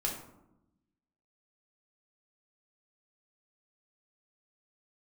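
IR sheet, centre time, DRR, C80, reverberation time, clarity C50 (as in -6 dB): 33 ms, -1.5 dB, 9.0 dB, 0.90 s, 5.5 dB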